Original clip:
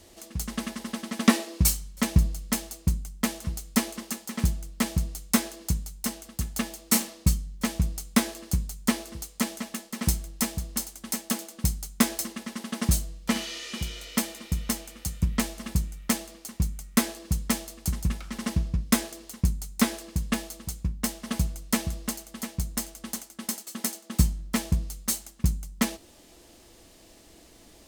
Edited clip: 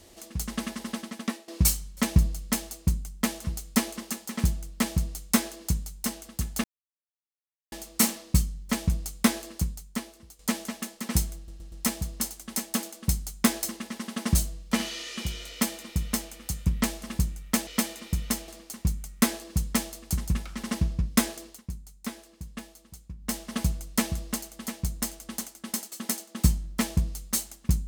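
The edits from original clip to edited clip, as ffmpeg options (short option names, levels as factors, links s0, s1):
-filter_complex "[0:a]asplit=11[s0][s1][s2][s3][s4][s5][s6][s7][s8][s9][s10];[s0]atrim=end=1.48,asetpts=PTS-STARTPTS,afade=t=out:st=0.97:d=0.51:c=qua:silence=0.133352[s11];[s1]atrim=start=1.48:end=6.64,asetpts=PTS-STARTPTS,afade=t=in:d=0.004:c=hsin:silence=0.133352,afade=t=out:st=5.156:d=0.004:c=hsin,apad=pad_dur=1.08[s12];[s2]atrim=start=6.64:end=9.31,asetpts=PTS-STARTPTS,afade=t=in:d=0.004:c=hsin,afade=t=out:st=1.77:d=0.9:c=qua:silence=0.211349[s13];[s3]atrim=start=9.31:end=10.402,asetpts=PTS-STARTPTS,afade=t=in:d=0.004:c=hsin:silence=0.211349[s14];[s4]atrim=start=10.278:end=10.402[s15];[s5]atrim=start=10.278:end=10.402[s16];[s6]atrim=start=10.278:end=16.232[s17];[s7]atrim=start=14.058:end=14.872[s18];[s8]atrim=start=16.228:end=19.38,asetpts=PTS-STARTPTS,afade=t=out:st=2.962:d=0.19:silence=0.237137[s19];[s9]atrim=start=19.38:end=20.92,asetpts=PTS-STARTPTS,volume=0.237[s20];[s10]atrim=start=20.92,asetpts=PTS-STARTPTS,afade=t=in:d=0.19:silence=0.237137[s21];[s11][s12][s13][s14]concat=n=4:v=0:a=1[s22];[s22][s15]acrossfade=d=0.004:c1=hsin:c2=hsin[s23];[s23][s16]acrossfade=d=0.004:c1=hsin:c2=hsin[s24];[s24][s17]acrossfade=d=0.004:c1=hsin:c2=hsin[s25];[s25][s18]acrossfade=d=0.004:c1=hsin:c2=hsin[s26];[s19][s20][s21]concat=n=3:v=0:a=1[s27];[s26][s27]acrossfade=d=0.004:c1=hsin:c2=hsin"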